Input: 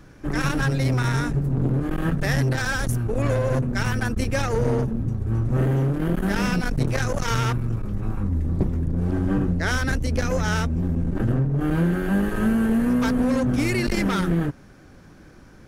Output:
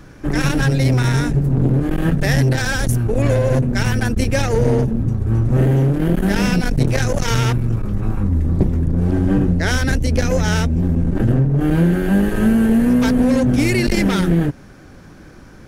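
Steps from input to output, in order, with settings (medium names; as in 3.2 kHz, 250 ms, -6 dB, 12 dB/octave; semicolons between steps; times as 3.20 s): dynamic bell 1.2 kHz, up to -7 dB, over -44 dBFS, Q 2; trim +6.5 dB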